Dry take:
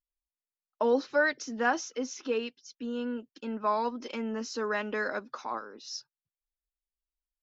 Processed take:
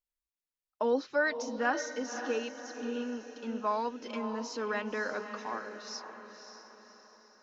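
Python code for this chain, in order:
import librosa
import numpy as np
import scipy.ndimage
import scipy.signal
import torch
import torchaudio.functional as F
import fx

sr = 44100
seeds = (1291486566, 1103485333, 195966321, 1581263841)

y = fx.echo_diffused(x, sr, ms=555, feedback_pct=46, wet_db=-9)
y = F.gain(torch.from_numpy(y), -3.0).numpy()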